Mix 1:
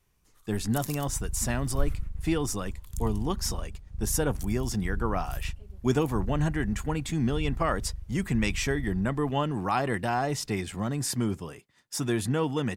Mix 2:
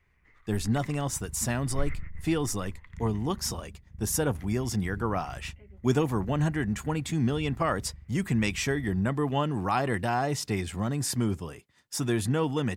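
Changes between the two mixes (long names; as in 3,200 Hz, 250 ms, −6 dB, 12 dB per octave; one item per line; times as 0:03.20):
first sound: add low-pass with resonance 2,000 Hz, resonance Q 11
second sound: add resonant band-pass 210 Hz, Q 1.2
master: add parametric band 74 Hz +5.5 dB 0.86 octaves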